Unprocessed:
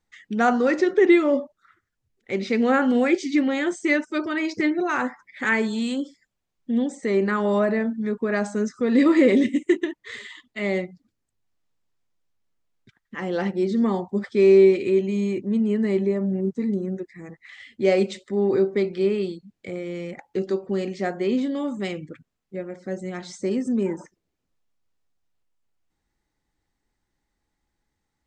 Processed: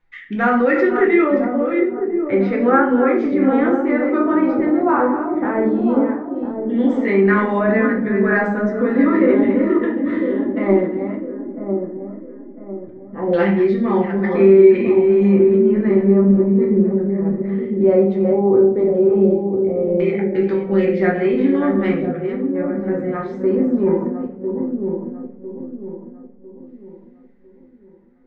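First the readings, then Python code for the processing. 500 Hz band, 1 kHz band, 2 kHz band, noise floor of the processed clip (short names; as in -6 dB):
+7.5 dB, +7.0 dB, +4.0 dB, -45 dBFS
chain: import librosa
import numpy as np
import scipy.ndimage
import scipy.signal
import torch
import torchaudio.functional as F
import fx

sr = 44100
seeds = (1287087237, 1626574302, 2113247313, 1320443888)

p1 = fx.reverse_delay(x, sr, ms=362, wet_db=-9.5)
p2 = fx.over_compress(p1, sr, threshold_db=-24.0, ratio=-1.0)
p3 = p1 + (p2 * 10.0 ** (1.0 / 20.0))
p4 = fx.filter_lfo_lowpass(p3, sr, shape='saw_down', hz=0.15, low_hz=660.0, high_hz=2400.0, q=1.8)
p5 = fx.echo_wet_lowpass(p4, sr, ms=1001, feedback_pct=37, hz=700.0, wet_db=-5.5)
p6 = fx.room_shoebox(p5, sr, seeds[0], volume_m3=53.0, walls='mixed', distance_m=0.7)
y = p6 * 10.0 ** (-5.0 / 20.0)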